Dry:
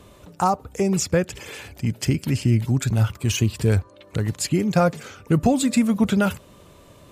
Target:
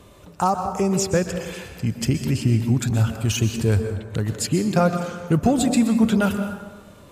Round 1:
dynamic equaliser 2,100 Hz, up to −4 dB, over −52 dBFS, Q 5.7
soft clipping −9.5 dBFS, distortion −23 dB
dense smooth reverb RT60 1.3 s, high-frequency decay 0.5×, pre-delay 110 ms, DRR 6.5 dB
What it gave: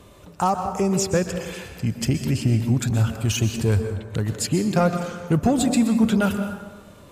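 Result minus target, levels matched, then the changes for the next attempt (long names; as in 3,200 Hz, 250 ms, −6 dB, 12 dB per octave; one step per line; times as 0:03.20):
soft clipping: distortion +11 dB
change: soft clipping −3 dBFS, distortion −34 dB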